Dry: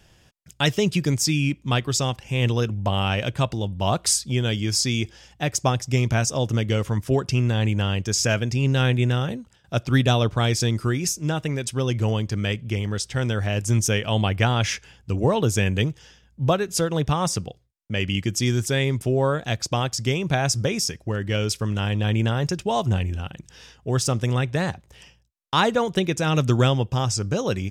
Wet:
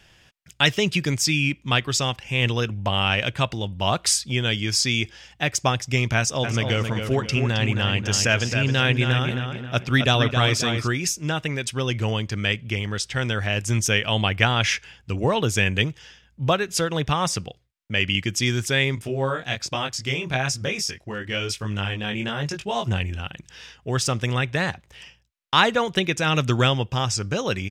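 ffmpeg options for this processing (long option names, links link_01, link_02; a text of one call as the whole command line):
ffmpeg -i in.wav -filter_complex "[0:a]asplit=3[link_01][link_02][link_03];[link_01]afade=type=out:start_time=6.43:duration=0.02[link_04];[link_02]asplit=2[link_05][link_06];[link_06]adelay=267,lowpass=frequency=3600:poles=1,volume=-6dB,asplit=2[link_07][link_08];[link_08]adelay=267,lowpass=frequency=3600:poles=1,volume=0.4,asplit=2[link_09][link_10];[link_10]adelay=267,lowpass=frequency=3600:poles=1,volume=0.4,asplit=2[link_11][link_12];[link_12]adelay=267,lowpass=frequency=3600:poles=1,volume=0.4,asplit=2[link_13][link_14];[link_14]adelay=267,lowpass=frequency=3600:poles=1,volume=0.4[link_15];[link_05][link_07][link_09][link_11][link_13][link_15]amix=inputs=6:normalize=0,afade=type=in:start_time=6.43:duration=0.02,afade=type=out:start_time=10.86:duration=0.02[link_16];[link_03]afade=type=in:start_time=10.86:duration=0.02[link_17];[link_04][link_16][link_17]amix=inputs=3:normalize=0,asettb=1/sr,asplit=3[link_18][link_19][link_20];[link_18]atrim=end=18.954[link_21];[link_19]atrim=start=18.95:end=22.88,asetpts=PTS-STARTPTS,afade=type=in:duration=0.004:curve=qsin,afade=type=out:start_time=3.926:duration=0.004:curve=qsin,flanger=delay=19.5:depth=4:speed=1.1[link_22];[link_20]atrim=start=22.876[link_23];[link_21][link_22]acrossfade=duration=0.004:curve1=hsin:curve2=qsin[link_24];[link_24][link_23]acrossfade=duration=0.004:curve1=qsin:curve2=hsin,equalizer=frequency=2300:width=0.59:gain=9,volume=-2.5dB" out.wav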